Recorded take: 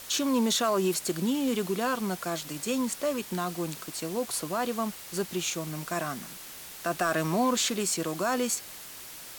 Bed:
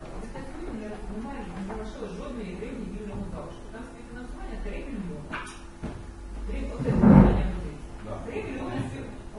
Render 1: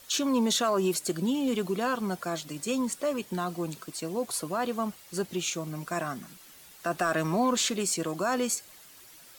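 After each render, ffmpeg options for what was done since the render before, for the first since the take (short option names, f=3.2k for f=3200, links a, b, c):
-af "afftdn=nr=10:nf=-44"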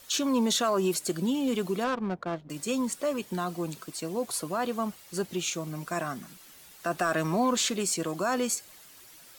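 -filter_complex "[0:a]asettb=1/sr,asplit=3[a][b][c];[a]atrim=end=1.844[d];[b]atrim=start=1.84:end=2.5,asetpts=PTS-STARTPTS,afade=t=in:d=0.004:c=qsin,afade=t=out:st=0.656:d=0.004:c=qsin,adynamicsmooth=sensitivity=3:basefreq=500[e];[c]atrim=start=2.496[f];[d][e]acrossfade=d=0.004:c1=hsin:c2=qsin[g];[g][f]acrossfade=d=0.004:c1=qsin:c2=hsin"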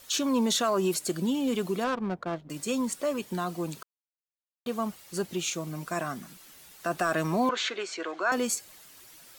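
-filter_complex "[0:a]asettb=1/sr,asplit=3[a][b][c];[a]atrim=end=7.494[d];[b]atrim=start=7.49:end=8.32,asetpts=PTS-STARTPTS,afade=t=in:d=0.004:c=qsin,afade=t=out:st=0.826:d=0.004:c=qsin,highpass=f=360:w=0.5412,highpass=f=360:w=1.3066,equalizer=f=550:t=q:w=4:g=-4,equalizer=f=1.5k:t=q:w=4:g=8,equalizer=f=2.1k:t=q:w=4:g=5,equalizer=f=5k:t=q:w=4:g=-6,lowpass=f=5.2k:w=0.5412,lowpass=f=5.2k:w=1.3066[e];[c]atrim=start=8.316[f];[d][e]acrossfade=d=0.004:c1=hsin:c2=qsin[g];[g][f]acrossfade=d=0.004:c1=qsin:c2=hsin,asplit=3[h][i][j];[h]atrim=end=3.83,asetpts=PTS-STARTPTS,afade=t=out:st=3.826:d=0.004:c=hsin[k];[i]atrim=start=3.83:end=4.66,asetpts=PTS-STARTPTS,volume=0[l];[j]atrim=start=4.66,asetpts=PTS-STARTPTS,afade=t=in:d=0.004:c=hsin[m];[k][l][m]concat=n=3:v=0:a=1"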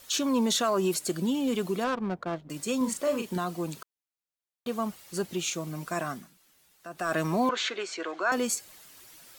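-filter_complex "[0:a]asettb=1/sr,asplit=3[a][b][c];[a]atrim=end=2.774[d];[b]atrim=start=2.77:end=3.38,asetpts=PTS-STARTPTS,afade=t=in:d=0.004:c=qsin,afade=t=out:st=0.606:d=0.004:c=qsin,asplit=2[e][f];[f]adelay=39,volume=-5.5dB[g];[e][g]amix=inputs=2:normalize=0,atrim=end_sample=26901[h];[c]atrim=start=3.376[i];[d][h]acrossfade=d=0.004:c1=hsin:c2=qsin[j];[j][i]acrossfade=d=0.004:c1=qsin:c2=hsin,asplit=3[k][l][m];[k]atrim=end=6.31,asetpts=PTS-STARTPTS,afade=t=out:st=6.11:d=0.2:silence=0.251189[n];[l]atrim=start=6.31:end=6.94,asetpts=PTS-STARTPTS,volume=-12dB[o];[m]atrim=start=6.94,asetpts=PTS-STARTPTS,afade=t=in:d=0.2:silence=0.251189[p];[n][o][p]concat=n=3:v=0:a=1"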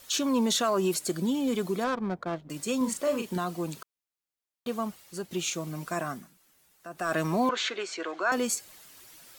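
-filter_complex "[0:a]asettb=1/sr,asplit=3[a][b][c];[a]atrim=end=1.074[d];[b]atrim=start=1.07:end=2.29,asetpts=PTS-STARTPTS,afade=t=in:d=0.004:c=qsin,afade=t=out:st=1.216:d=0.004:c=qsin,bandreject=f=2.8k:w=9.2[e];[c]atrim=start=2.286[f];[d][e]acrossfade=d=0.004:c1=hsin:c2=qsin[g];[g][f]acrossfade=d=0.004:c1=qsin:c2=hsin,asettb=1/sr,asplit=3[h][i][j];[h]atrim=end=5.954[k];[i]atrim=start=5.95:end=7.02,asetpts=PTS-STARTPTS,afade=t=in:d=0.004:c=qsin,afade=t=out:st=1.066:d=0.004:c=qsin,equalizer=f=3.7k:t=o:w=1.4:g=-3.5[l];[j]atrim=start=7.016[m];[k][l]acrossfade=d=0.004:c1=hsin:c2=qsin[n];[n][m]acrossfade=d=0.004:c1=qsin:c2=hsin,asplit=2[o][p];[o]atrim=end=5.31,asetpts=PTS-STARTPTS,afade=t=out:st=4.69:d=0.62:silence=0.446684[q];[p]atrim=start=5.31,asetpts=PTS-STARTPTS,afade=t=in:d=0.004:c=hsin:silence=0.446684[r];[q][r]concat=n=2:v=0:a=1"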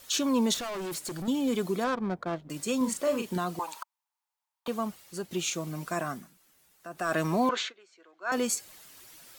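-filter_complex "[0:a]asettb=1/sr,asplit=3[a][b][c];[a]atrim=end=0.544[d];[b]atrim=start=0.54:end=1.28,asetpts=PTS-STARTPTS,afade=t=in:d=0.004:c=qsin,afade=t=out:st=0.736:d=0.004:c=qsin,asoftclip=type=hard:threshold=-33.5dB[e];[c]atrim=start=1.276[f];[d][e]acrossfade=d=0.004:c1=hsin:c2=qsin[g];[g][f]acrossfade=d=0.004:c1=qsin:c2=hsin,asettb=1/sr,asplit=3[h][i][j];[h]atrim=end=3.594[k];[i]atrim=start=3.59:end=4.68,asetpts=PTS-STARTPTS,afade=t=in:d=0.004:c=qsin,afade=t=out:st=1.086:d=0.004:c=qsin,highpass=f=900:t=q:w=7.7[l];[j]atrim=start=4.676[m];[k][l]acrossfade=d=0.004:c1=hsin:c2=qsin[n];[n][m]acrossfade=d=0.004:c1=qsin:c2=hsin,asplit=3[o][p][q];[o]atrim=end=7.73,asetpts=PTS-STARTPTS,afade=t=out:st=7.59:d=0.14:silence=0.0668344[r];[p]atrim=start=7.73:end=8.21,asetpts=PTS-STARTPTS,volume=-23.5dB[s];[q]atrim=start=8.21,asetpts=PTS-STARTPTS,afade=t=in:d=0.14:silence=0.0668344[t];[r][s][t]concat=n=3:v=0:a=1"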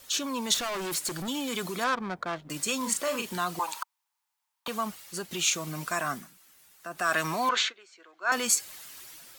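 -filter_complex "[0:a]acrossover=split=900[a][b];[a]alimiter=level_in=5.5dB:limit=-24dB:level=0:latency=1,volume=-5.5dB[c];[b]dynaudnorm=f=140:g=7:m=6.5dB[d];[c][d]amix=inputs=2:normalize=0"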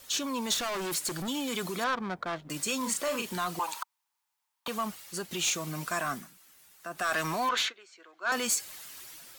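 -af "asoftclip=type=tanh:threshold=-22dB"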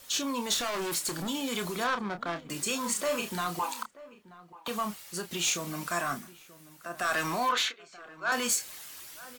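-filter_complex "[0:a]asplit=2[a][b];[b]adelay=29,volume=-8.5dB[c];[a][c]amix=inputs=2:normalize=0,asplit=2[d][e];[e]adelay=932.9,volume=-18dB,highshelf=f=4k:g=-21[f];[d][f]amix=inputs=2:normalize=0"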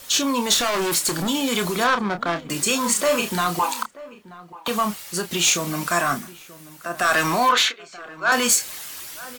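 -af "volume=10dB"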